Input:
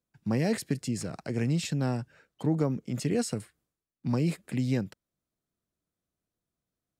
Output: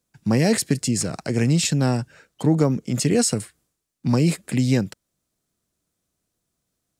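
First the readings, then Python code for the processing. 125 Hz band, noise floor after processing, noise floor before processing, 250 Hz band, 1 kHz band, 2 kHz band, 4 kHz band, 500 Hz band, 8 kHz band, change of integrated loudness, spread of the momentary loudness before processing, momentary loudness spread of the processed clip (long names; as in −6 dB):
+8.5 dB, −79 dBFS, below −85 dBFS, +8.5 dB, +8.5 dB, +9.5 dB, +12.5 dB, +8.5 dB, +15.0 dB, +9.0 dB, 7 LU, 9 LU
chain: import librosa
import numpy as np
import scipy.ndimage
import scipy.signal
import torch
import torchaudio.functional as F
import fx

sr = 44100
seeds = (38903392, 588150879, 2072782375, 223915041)

y = fx.peak_eq(x, sr, hz=7800.0, db=7.0, octaves=1.6)
y = y * librosa.db_to_amplitude(8.5)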